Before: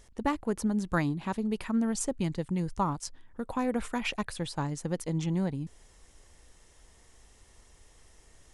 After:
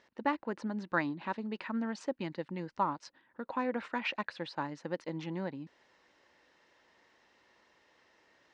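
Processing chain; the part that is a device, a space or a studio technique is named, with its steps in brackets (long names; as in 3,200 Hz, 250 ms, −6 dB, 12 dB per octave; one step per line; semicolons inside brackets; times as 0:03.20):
phone earpiece (loudspeaker in its box 390–3,800 Hz, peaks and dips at 430 Hz −8 dB, 720 Hz −7 dB, 1,200 Hz −5 dB, 2,300 Hz −4 dB, 3,300 Hz −8 dB)
level +3 dB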